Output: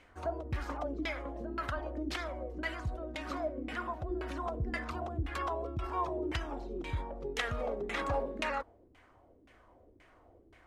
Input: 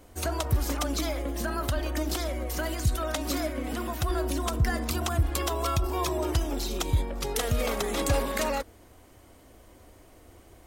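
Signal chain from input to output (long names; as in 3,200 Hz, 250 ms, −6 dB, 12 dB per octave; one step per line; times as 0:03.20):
first-order pre-emphasis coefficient 0.9
auto-filter low-pass saw down 1.9 Hz 280–2,400 Hz
level +8.5 dB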